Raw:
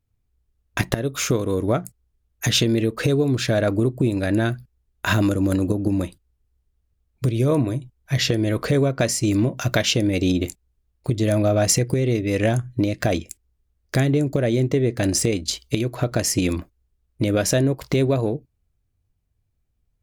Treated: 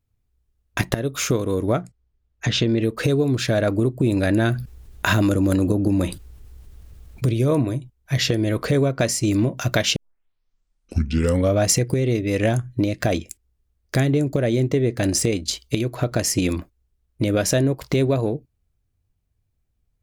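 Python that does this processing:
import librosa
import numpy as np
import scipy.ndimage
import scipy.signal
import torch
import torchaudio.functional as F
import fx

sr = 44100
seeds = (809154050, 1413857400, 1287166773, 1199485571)

y = fx.air_absorb(x, sr, metres=120.0, at=(1.82, 2.81), fade=0.02)
y = fx.env_flatten(y, sr, amount_pct=50, at=(4.03, 7.34))
y = fx.edit(y, sr, fx.tape_start(start_s=9.96, length_s=1.64), tone=tone)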